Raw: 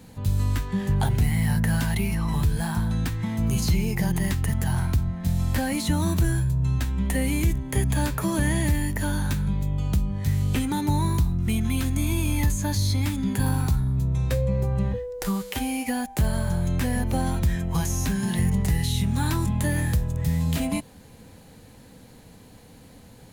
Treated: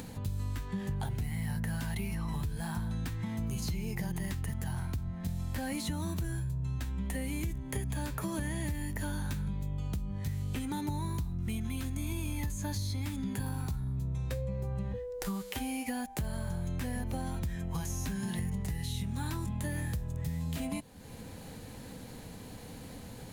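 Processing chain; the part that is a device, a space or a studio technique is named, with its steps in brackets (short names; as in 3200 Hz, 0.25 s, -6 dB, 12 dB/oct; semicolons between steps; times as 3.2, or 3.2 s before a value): upward and downward compression (upward compressor, threshold -28 dBFS; compressor, threshold -24 dBFS, peak gain reduction 7.5 dB); gain -7 dB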